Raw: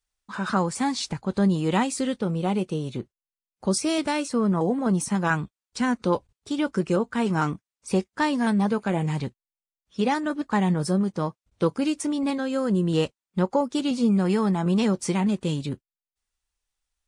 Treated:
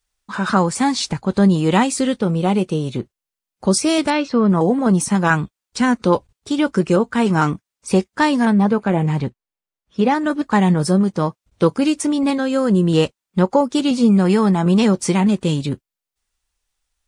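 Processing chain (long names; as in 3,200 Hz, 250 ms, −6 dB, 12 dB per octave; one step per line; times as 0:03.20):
0:04.10–0:04.50: low-pass filter 4,500 Hz 24 dB per octave
0:08.45–0:10.21: high-shelf EQ 3,300 Hz −10.5 dB
level +7.5 dB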